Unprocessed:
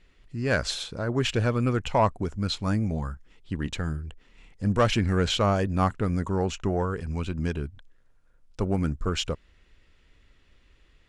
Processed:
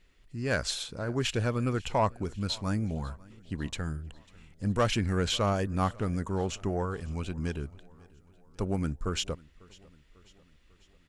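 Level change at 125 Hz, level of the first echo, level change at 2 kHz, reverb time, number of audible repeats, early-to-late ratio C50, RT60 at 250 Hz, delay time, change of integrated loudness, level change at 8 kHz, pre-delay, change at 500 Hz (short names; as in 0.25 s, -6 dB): -4.5 dB, -24.0 dB, -4.0 dB, none, 3, none, none, 0.546 s, -4.0 dB, 0.0 dB, none, -4.5 dB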